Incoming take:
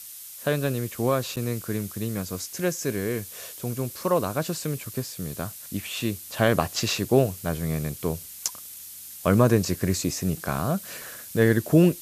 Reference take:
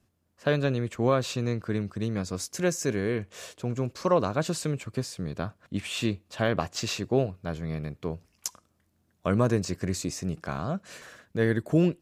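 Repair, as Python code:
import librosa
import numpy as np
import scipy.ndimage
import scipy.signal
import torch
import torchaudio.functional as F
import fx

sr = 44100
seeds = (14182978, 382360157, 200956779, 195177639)

y = fx.fix_interpolate(x, sr, at_s=(1.36,), length_ms=8.2)
y = fx.noise_reduce(y, sr, print_start_s=8.74, print_end_s=9.24, reduce_db=27.0)
y = fx.gain(y, sr, db=fx.steps((0.0, 0.0), (6.23, -5.0)))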